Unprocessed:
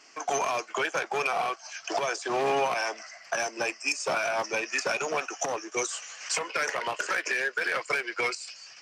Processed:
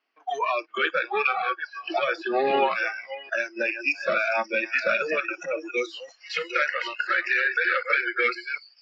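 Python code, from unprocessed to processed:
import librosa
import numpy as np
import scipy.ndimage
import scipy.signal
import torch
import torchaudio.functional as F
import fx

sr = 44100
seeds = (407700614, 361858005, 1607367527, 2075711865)

y = fx.reverse_delay(x, sr, ms=412, wet_db=-6.5)
y = fx.noise_reduce_blind(y, sr, reduce_db=26)
y = scipy.signal.sosfilt(scipy.signal.ellip(3, 1.0, 40, [190.0, 3800.0], 'bandpass', fs=sr, output='sos'), y)
y = y * 10.0 ** (6.0 / 20.0)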